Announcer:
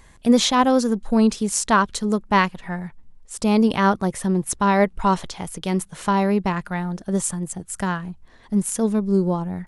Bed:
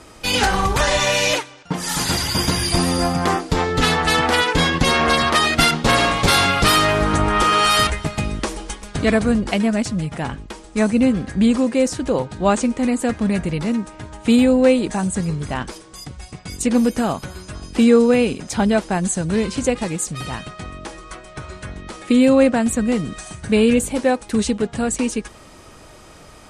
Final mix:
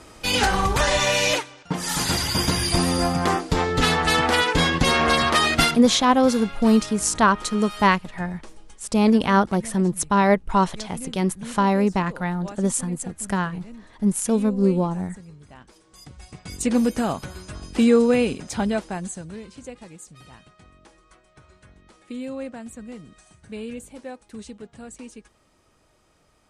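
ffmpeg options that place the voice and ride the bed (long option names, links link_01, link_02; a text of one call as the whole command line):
ffmpeg -i stem1.wav -i stem2.wav -filter_complex "[0:a]adelay=5500,volume=0dB[link_01];[1:a]volume=15.5dB,afade=type=out:start_time=5.6:duration=0.27:silence=0.112202,afade=type=in:start_time=15.67:duration=0.95:silence=0.125893,afade=type=out:start_time=18.31:duration=1.09:silence=0.16788[link_02];[link_01][link_02]amix=inputs=2:normalize=0" out.wav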